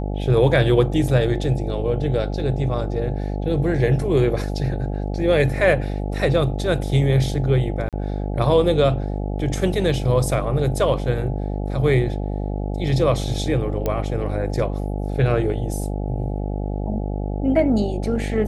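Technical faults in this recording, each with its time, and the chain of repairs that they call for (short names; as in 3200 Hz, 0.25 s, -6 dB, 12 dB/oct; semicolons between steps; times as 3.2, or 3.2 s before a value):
buzz 50 Hz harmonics 17 -25 dBFS
7.89–7.93 gap 37 ms
13.86 pop -10 dBFS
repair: de-click; de-hum 50 Hz, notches 17; interpolate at 7.89, 37 ms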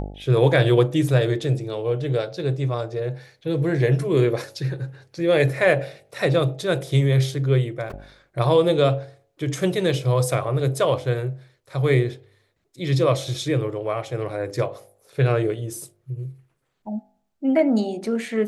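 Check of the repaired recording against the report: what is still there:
none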